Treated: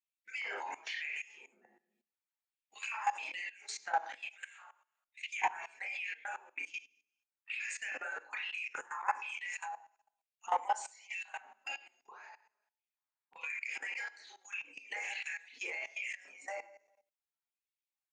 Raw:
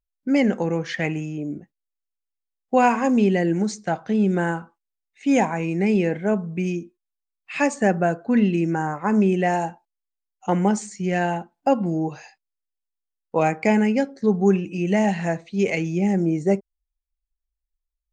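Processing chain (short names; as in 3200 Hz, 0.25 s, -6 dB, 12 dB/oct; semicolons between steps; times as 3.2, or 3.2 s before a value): median-filter separation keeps percussive; 11.84–13.5 high shelf 2600 Hz -11.5 dB; LFO high-pass square 1.2 Hz 930–2600 Hz; reverb RT60 0.45 s, pre-delay 27 ms, DRR -2.5 dB; level quantiser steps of 18 dB; 4.55–5.37 HPF 480 Hz 24 dB/oct; three-band squash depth 40%; gain -4.5 dB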